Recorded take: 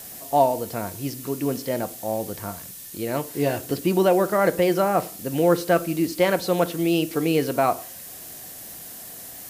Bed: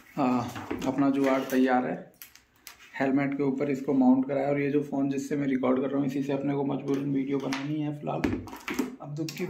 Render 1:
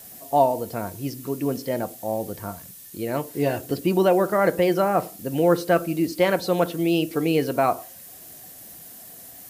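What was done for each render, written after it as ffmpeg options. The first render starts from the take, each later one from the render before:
-af "afftdn=nr=6:nf=-40"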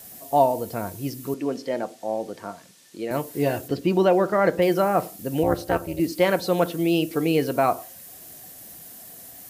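-filter_complex "[0:a]asettb=1/sr,asplit=3[a][b][c];[a]atrim=end=1.344[d];[b]atrim=start=1.34:end=3.11,asetpts=PTS-STARTPTS,afade=t=in:d=0.004:c=qsin,afade=t=out:st=1.766:d=0.004:c=qsin,highpass=240,lowpass=6k[e];[c]atrim=start=3.106[f];[d][e]acrossfade=d=0.004:c1=hsin:c2=qsin[g];[g][f]acrossfade=d=0.004:c1=qsin:c2=hsin,asettb=1/sr,asplit=3[h][i][j];[h]atrim=end=3.684[k];[i]atrim=start=3.68:end=4.62,asetpts=PTS-STARTPTS,afade=t=in:d=0.004:c=qsin,afade=t=out:st=0.936:d=0.004:c=qsin,acrossover=split=6700[l][m];[m]acompressor=threshold=-55dB:ratio=4:attack=1:release=60[n];[l][n]amix=inputs=2:normalize=0[o];[j]atrim=start=4.616[p];[k][o]acrossfade=d=0.004:c1=hsin:c2=qsin[q];[q][p]acrossfade=d=0.004:c1=qsin:c2=hsin,asettb=1/sr,asplit=3[r][s][t];[r]atrim=end=5.434[u];[s]atrim=start=5.43:end=6,asetpts=PTS-STARTPTS,afade=t=in:d=0.004:c=qsin,afade=t=out:st=0.566:d=0.004:c=qsin,tremolo=f=240:d=0.947[v];[t]atrim=start=5.996[w];[u][v]acrossfade=d=0.004:c1=hsin:c2=qsin[x];[x][w]acrossfade=d=0.004:c1=qsin:c2=hsin"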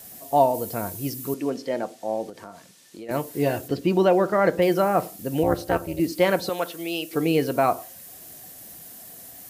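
-filter_complex "[0:a]asettb=1/sr,asplit=3[a][b][c];[a]atrim=end=0.544[d];[b]atrim=start=0.54:end=1.5,asetpts=PTS-STARTPTS,afade=t=in:d=0.004:c=qsin,afade=t=out:st=0.956:d=0.004:c=qsin,highshelf=f=7.9k:g=8[e];[c]atrim=start=1.496[f];[d][e]acrossfade=d=0.004:c1=hsin:c2=qsin[g];[g][f]acrossfade=d=0.004:c1=qsin:c2=hsin,asettb=1/sr,asplit=3[h][i][j];[h]atrim=end=2.294[k];[i]atrim=start=2.29:end=3.09,asetpts=PTS-STARTPTS,afade=t=in:d=0.004:c=qsin,afade=t=out:st=0.796:d=0.004:c=qsin,acompressor=threshold=-36dB:ratio=4:attack=3.2:release=140:knee=1:detection=peak[l];[j]atrim=start=3.086[m];[k][l]acrossfade=d=0.004:c1=hsin:c2=qsin[n];[n][m]acrossfade=d=0.004:c1=qsin:c2=hsin,asettb=1/sr,asplit=3[o][p][q];[o]atrim=end=6.494[r];[p]atrim=start=6.49:end=7.13,asetpts=PTS-STARTPTS,afade=t=in:d=0.004:c=qsin,afade=t=out:st=0.636:d=0.004:c=qsin,highpass=f=930:p=1[s];[q]atrim=start=7.126[t];[r][s]acrossfade=d=0.004:c1=hsin:c2=qsin[u];[u][t]acrossfade=d=0.004:c1=qsin:c2=hsin"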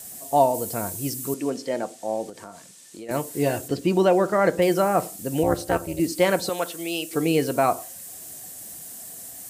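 -af "equalizer=f=8.1k:w=1.5:g=10"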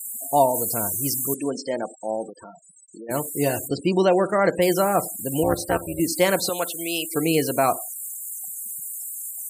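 -af "highshelf=f=4.3k:g=8.5,afftfilt=real='re*gte(hypot(re,im),0.0224)':imag='im*gte(hypot(re,im),0.0224)':win_size=1024:overlap=0.75"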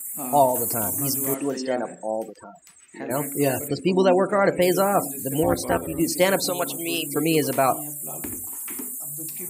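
-filter_complex "[1:a]volume=-8.5dB[a];[0:a][a]amix=inputs=2:normalize=0"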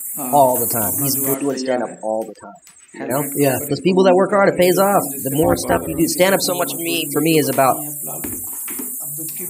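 -af "volume=6dB,alimiter=limit=-2dB:level=0:latency=1"

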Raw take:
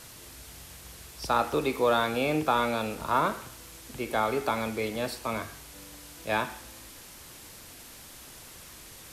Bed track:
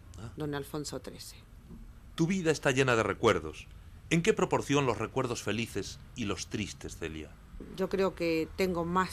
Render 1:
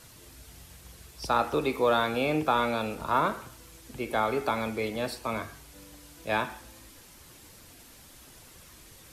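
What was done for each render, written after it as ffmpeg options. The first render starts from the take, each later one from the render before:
-af "afftdn=nr=6:nf=-48"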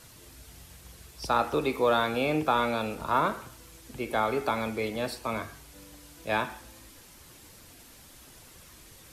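-af anull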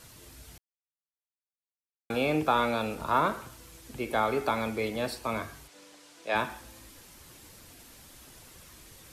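-filter_complex "[0:a]asplit=3[a][b][c];[a]afade=t=out:st=5.67:d=0.02[d];[b]highpass=350,lowpass=7.6k,afade=t=in:st=5.67:d=0.02,afade=t=out:st=6.34:d=0.02[e];[c]afade=t=in:st=6.34:d=0.02[f];[d][e][f]amix=inputs=3:normalize=0,asplit=3[g][h][i];[g]atrim=end=0.58,asetpts=PTS-STARTPTS,afade=t=out:st=0.576:d=0.004:c=hsin[j];[h]atrim=start=0.58:end=2.1,asetpts=PTS-STARTPTS,volume=0[k];[i]atrim=start=2.1,asetpts=PTS-STARTPTS,afade=t=in:d=0.004:c=hsin[l];[j][k][l]concat=n=3:v=0:a=1"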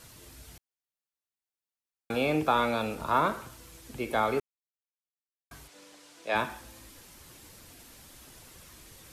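-filter_complex "[0:a]asplit=3[a][b][c];[a]atrim=end=4.4,asetpts=PTS-STARTPTS,afade=t=out:st=4.396:d=0.004:c=hsin[d];[b]atrim=start=4.4:end=5.51,asetpts=PTS-STARTPTS,volume=0[e];[c]atrim=start=5.51,asetpts=PTS-STARTPTS,afade=t=in:d=0.004:c=hsin[f];[d][e][f]concat=n=3:v=0:a=1"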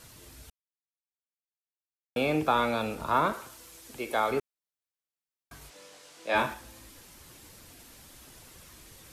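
-filter_complex "[0:a]asettb=1/sr,asplit=3[a][b][c];[a]atrim=end=3.334[d];[b]atrim=start=3.33:end=4.31,asetpts=PTS-STARTPTS,afade=t=in:d=0.004:c=qsin,afade=t=out:st=0.976:d=0.004:c=qsin,bass=f=250:g=-10,treble=f=4k:g=3[e];[c]atrim=start=4.306[f];[d][e]acrossfade=d=0.004:c1=hsin:c2=qsin[g];[g][f]acrossfade=d=0.004:c1=qsin:c2=hsin,asettb=1/sr,asplit=3[h][i][j];[h]atrim=end=5.594[k];[i]atrim=start=5.59:end=6.54,asetpts=PTS-STARTPTS,afade=t=in:d=0.004:c=qsin,afade=t=out:st=0.946:d=0.004:c=qsin,asplit=2[l][m];[m]adelay=22,volume=-2dB[n];[l][n]amix=inputs=2:normalize=0,atrim=end_sample=41895[o];[j]atrim=start=6.536[p];[k][o]acrossfade=d=0.004:c1=hsin:c2=qsin[q];[q][p]acrossfade=d=0.004:c1=qsin:c2=hsin,asplit=3[r][s][t];[r]atrim=end=0.5,asetpts=PTS-STARTPTS,afade=t=out:st=0.496:d=0.004:c=hsin[u];[s]atrim=start=0.5:end=2.16,asetpts=PTS-STARTPTS,volume=0[v];[t]atrim=start=2.16,asetpts=PTS-STARTPTS,afade=t=in:d=0.004:c=hsin[w];[u][v][w]concat=n=3:v=0:a=1"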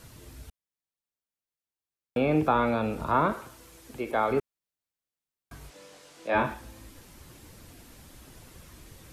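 -filter_complex "[0:a]acrossover=split=2700[a][b];[b]acompressor=threshold=-52dB:ratio=4:attack=1:release=60[c];[a][c]amix=inputs=2:normalize=0,lowshelf=f=390:g=6.5"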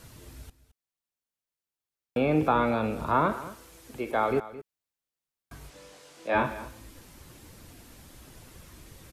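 -af "aecho=1:1:217:0.158"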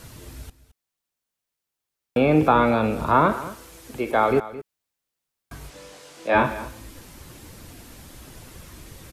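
-af "volume=6.5dB"

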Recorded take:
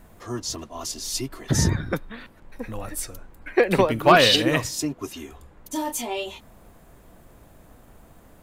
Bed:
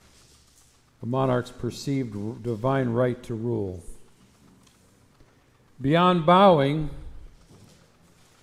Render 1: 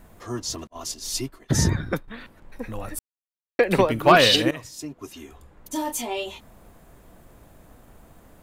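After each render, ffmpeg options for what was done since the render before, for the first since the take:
-filter_complex "[0:a]asettb=1/sr,asplit=3[a][b][c];[a]atrim=end=0.674[d];[b]atrim=start=0.67:end=2.08,asetpts=PTS-STARTPTS,afade=t=in:d=0.004:c=qsin,afade=t=out:st=1.406:d=0.004:c=qsin,agate=range=-33dB:threshold=-32dB:ratio=3:release=100:detection=peak[e];[c]atrim=start=2.076[f];[d][e]acrossfade=d=0.004:c1=hsin:c2=qsin[g];[g][f]acrossfade=d=0.004:c1=qsin:c2=hsin,asplit=4[h][i][j][k];[h]atrim=end=2.99,asetpts=PTS-STARTPTS,afade=t=out:st=2.986:d=0.004:c=hsin[l];[i]atrim=start=2.99:end=3.59,asetpts=PTS-STARTPTS,volume=0[m];[j]atrim=start=3.59:end=4.51,asetpts=PTS-STARTPTS,afade=t=in:d=0.004:c=hsin,afade=t=out:st=0.916:d=0.004:c=hsin:silence=0.149624[n];[k]atrim=start=4.51,asetpts=PTS-STARTPTS,afade=t=in:d=1.22:silence=0.149624[o];[l][m][n][o]concat=n=4:v=0:a=1"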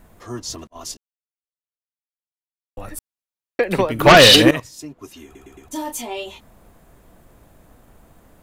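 -filter_complex "[0:a]asettb=1/sr,asplit=3[a][b][c];[a]atrim=end=3.994[d];[b]atrim=start=3.99:end=4.6,asetpts=PTS-STARTPTS,afade=t=in:d=0.004:c=qsin,afade=t=out:st=0.606:d=0.004:c=qsin,aeval=exprs='0.668*sin(PI/2*2.24*val(0)/0.668)':c=same[e];[c]atrim=start=4.596[f];[d][e]acrossfade=d=0.004:c1=hsin:c2=qsin[g];[g][f]acrossfade=d=0.004:c1=qsin:c2=hsin,asplit=7[h][i][j][k][l][m][n];[h]atrim=end=0.97,asetpts=PTS-STARTPTS,afade=t=out:st=0.966:d=0.004:c=hsin[o];[i]atrim=start=0.97:end=2.77,asetpts=PTS-STARTPTS,volume=0[p];[j]atrim=start=2.77:end=5.352,asetpts=PTS-STARTPTS,afade=t=in:d=0.004:c=hsin[q];[k]atrim=start=5.238:end=5.352[r];[l]atrim=start=5.238:end=5.352[s];[m]atrim=start=5.238:end=5.352[t];[n]atrim=start=5.678[u];[o][p][q]concat=n=3:v=0:a=1[v];[v][r]acrossfade=d=0.004:c1=hsin:c2=hsin[w];[w][s]acrossfade=d=0.004:c1=hsin:c2=hsin[x];[x][t]acrossfade=d=0.004:c1=hsin:c2=hsin[y];[y][u]acrossfade=d=0.004:c1=hsin:c2=hsin"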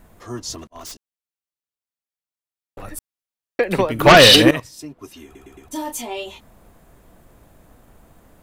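-filter_complex "[0:a]asettb=1/sr,asplit=3[a][b][c];[a]atrim=end=0.584[d];[b]atrim=start=0.58:end=2.83,asetpts=PTS-STARTPTS,afade=t=in:d=0.004:c=qsin,afade=t=out:st=2.246:d=0.004:c=qsin,aeval=exprs='0.0335*(abs(mod(val(0)/0.0335+3,4)-2)-1)':c=same[e];[c]atrim=start=2.826[f];[d][e]acrossfade=d=0.004:c1=hsin:c2=qsin[g];[g][f]acrossfade=d=0.004:c1=qsin:c2=hsin,asettb=1/sr,asplit=3[h][i][j];[h]atrim=end=4.164[k];[i]atrim=start=4.16:end=5.83,asetpts=PTS-STARTPTS,afade=t=in:d=0.004:c=qsin,afade=t=out:st=1.666:d=0.004:c=qsin,bandreject=f=6.8k:w=12[l];[j]atrim=start=5.826[m];[k][l]acrossfade=d=0.004:c1=hsin:c2=qsin[n];[n][m]acrossfade=d=0.004:c1=qsin:c2=hsin"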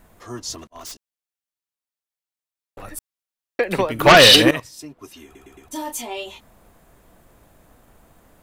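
-af "lowshelf=f=470:g=-4"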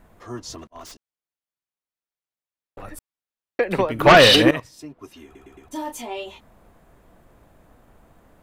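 -af "highshelf=f=3.6k:g=-9.5"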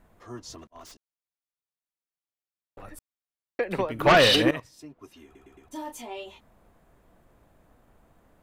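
-af "volume=-6.5dB"

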